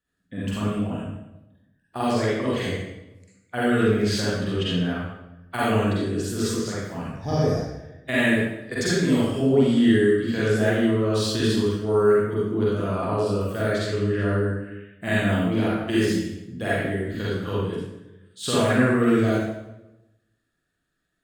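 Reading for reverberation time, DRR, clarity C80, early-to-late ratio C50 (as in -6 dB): 0.95 s, -8.5 dB, 1.0 dB, -4.0 dB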